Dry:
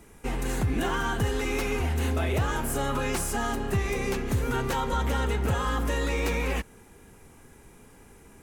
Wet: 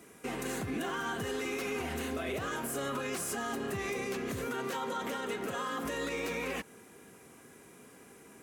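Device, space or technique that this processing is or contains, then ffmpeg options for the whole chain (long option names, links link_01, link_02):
PA system with an anti-feedback notch: -filter_complex "[0:a]highpass=190,asuperstop=centerf=870:order=8:qfactor=7.8,alimiter=level_in=3dB:limit=-24dB:level=0:latency=1:release=111,volume=-3dB,asettb=1/sr,asplit=3[link_01][link_02][link_03];[link_01]atrim=end=4.484[link_04];[link_02]atrim=start=4.48:end=5.85,asetpts=PTS-STARTPTS,afade=type=in:duration=0.004:curve=qsin,afade=type=out:start_time=1.366:duration=0.004:curve=qsin,highpass=170[link_05];[link_03]atrim=start=5.846[link_06];[link_04][link_05]acrossfade=duration=0.004:curve1=hsin:curve2=qsin[link_07];[link_07][link_06]acrossfade=duration=0.004:curve1=qsin:curve2=hsin"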